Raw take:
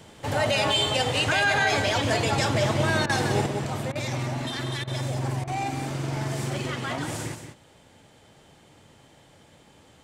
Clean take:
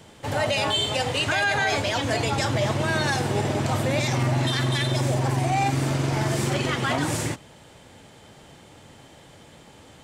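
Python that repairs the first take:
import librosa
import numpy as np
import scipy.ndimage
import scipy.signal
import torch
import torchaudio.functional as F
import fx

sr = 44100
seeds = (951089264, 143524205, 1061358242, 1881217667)

y = fx.fix_interpolate(x, sr, at_s=(3.06, 3.92, 4.84, 5.44), length_ms=33.0)
y = fx.fix_echo_inverse(y, sr, delay_ms=182, level_db=-8.5)
y = fx.gain(y, sr, db=fx.steps((0.0, 0.0), (3.46, 6.5)))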